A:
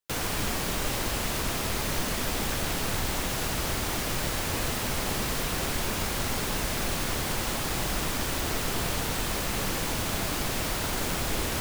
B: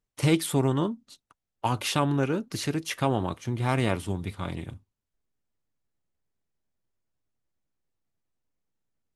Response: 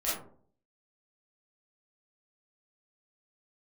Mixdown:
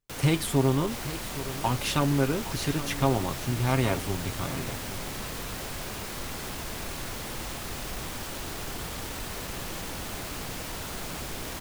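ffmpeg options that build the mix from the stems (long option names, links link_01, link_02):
-filter_complex "[0:a]asoftclip=type=tanh:threshold=-23dB,volume=-6.5dB,asplit=2[link_01][link_02];[link_02]volume=-3.5dB[link_03];[1:a]aecho=1:1:7.5:0.37,volume=-1.5dB,asplit=2[link_04][link_05];[link_05]volume=-14dB[link_06];[link_03][link_06]amix=inputs=2:normalize=0,aecho=0:1:816:1[link_07];[link_01][link_04][link_07]amix=inputs=3:normalize=0"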